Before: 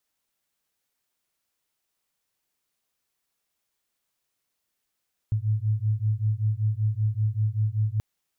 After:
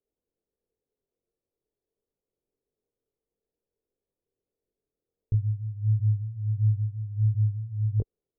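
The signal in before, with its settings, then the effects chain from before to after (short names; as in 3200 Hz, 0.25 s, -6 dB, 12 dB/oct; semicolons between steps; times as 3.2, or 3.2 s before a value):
beating tones 105 Hz, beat 5.2 Hz, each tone -25 dBFS 2.68 s
synth low-pass 440 Hz, resonance Q 4.9; low shelf 65 Hz +10.5 dB; chorus 1.5 Hz, delay 19.5 ms, depth 4.1 ms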